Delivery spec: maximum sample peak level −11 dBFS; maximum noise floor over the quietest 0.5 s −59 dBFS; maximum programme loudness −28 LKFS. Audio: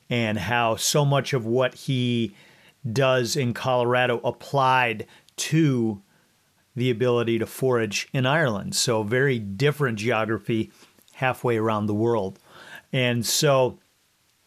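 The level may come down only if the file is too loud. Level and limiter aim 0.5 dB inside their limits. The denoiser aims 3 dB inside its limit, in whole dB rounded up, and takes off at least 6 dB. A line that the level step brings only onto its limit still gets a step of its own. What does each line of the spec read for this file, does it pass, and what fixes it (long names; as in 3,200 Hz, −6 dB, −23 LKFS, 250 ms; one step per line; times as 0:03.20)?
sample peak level −7.0 dBFS: out of spec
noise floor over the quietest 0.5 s −65 dBFS: in spec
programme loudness −23.5 LKFS: out of spec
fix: level −5 dB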